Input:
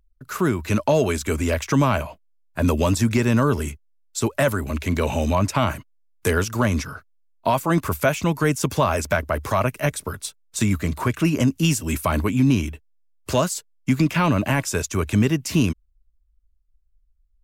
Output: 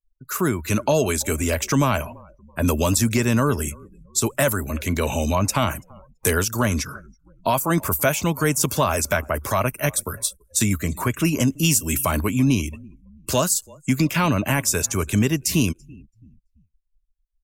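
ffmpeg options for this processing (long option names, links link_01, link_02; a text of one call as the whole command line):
ffmpeg -i in.wav -filter_complex "[0:a]crystalizer=i=2:c=0,asplit=4[link_01][link_02][link_03][link_04];[link_02]adelay=333,afreqshift=-32,volume=-23.5dB[link_05];[link_03]adelay=666,afreqshift=-64,volume=-29.7dB[link_06];[link_04]adelay=999,afreqshift=-96,volume=-35.9dB[link_07];[link_01][link_05][link_06][link_07]amix=inputs=4:normalize=0,afftdn=noise_reduction=34:noise_floor=-40,volume=-1dB" out.wav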